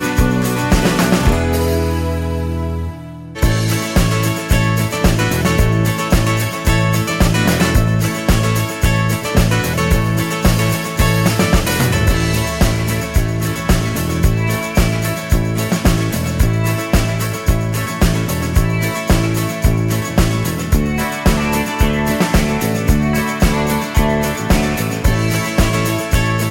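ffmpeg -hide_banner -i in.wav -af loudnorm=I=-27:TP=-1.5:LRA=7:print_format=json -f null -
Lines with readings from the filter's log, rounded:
"input_i" : "-16.0",
"input_tp" : "-1.6",
"input_lra" : "1.9",
"input_thresh" : "-26.1",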